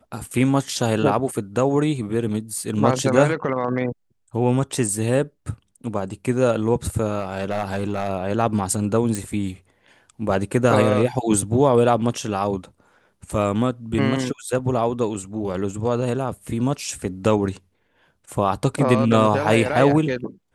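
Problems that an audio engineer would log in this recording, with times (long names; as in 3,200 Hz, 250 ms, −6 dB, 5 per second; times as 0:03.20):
0:07.19–0:08.10: clipping −17.5 dBFS
0:09.15: click −12 dBFS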